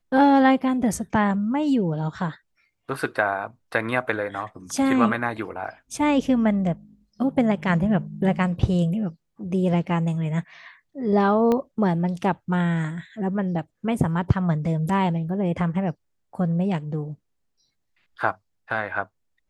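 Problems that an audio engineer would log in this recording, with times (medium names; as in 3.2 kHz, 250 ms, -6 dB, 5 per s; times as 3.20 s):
11.52 s: pop -12 dBFS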